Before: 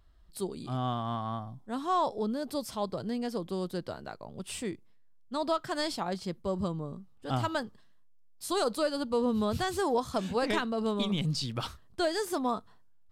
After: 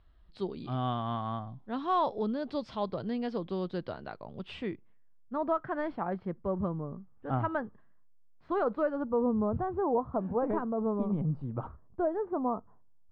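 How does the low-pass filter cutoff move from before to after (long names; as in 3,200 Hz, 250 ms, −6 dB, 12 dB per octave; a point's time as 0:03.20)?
low-pass filter 24 dB per octave
0:04.39 3,800 Hz
0:05.34 1,800 Hz
0:08.79 1,800 Hz
0:09.32 1,100 Hz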